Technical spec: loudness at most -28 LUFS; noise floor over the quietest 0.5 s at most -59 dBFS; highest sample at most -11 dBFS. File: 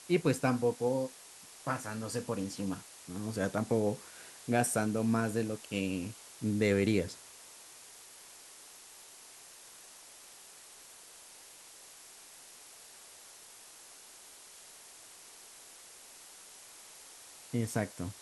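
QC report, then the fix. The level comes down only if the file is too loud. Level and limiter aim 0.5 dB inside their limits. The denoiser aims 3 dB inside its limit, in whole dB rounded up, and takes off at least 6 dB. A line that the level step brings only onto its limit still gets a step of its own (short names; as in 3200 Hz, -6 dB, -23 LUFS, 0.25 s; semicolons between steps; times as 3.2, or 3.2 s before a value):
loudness -33.5 LUFS: OK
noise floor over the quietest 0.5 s -54 dBFS: fail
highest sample -14.5 dBFS: OK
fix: denoiser 8 dB, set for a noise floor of -54 dBFS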